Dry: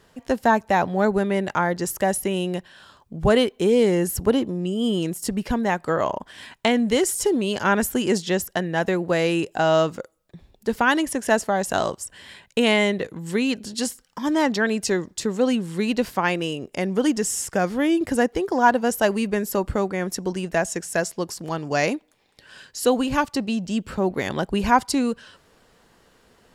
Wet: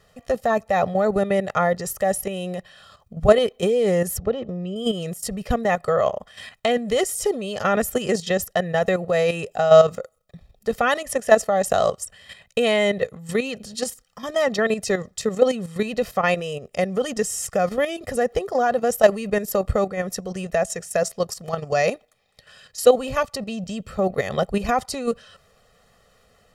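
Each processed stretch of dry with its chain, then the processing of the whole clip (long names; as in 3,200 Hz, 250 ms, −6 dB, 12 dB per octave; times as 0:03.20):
0:04.18–0:04.76: downward compressor 1.5 to 1, threshold −26 dBFS + high-frequency loss of the air 150 metres + notch filter 1,000 Hz, Q 8.6
whole clip: dynamic equaliser 480 Hz, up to +4 dB, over −34 dBFS, Q 1.2; comb filter 1.6 ms, depth 87%; output level in coarse steps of 10 dB; level +1.5 dB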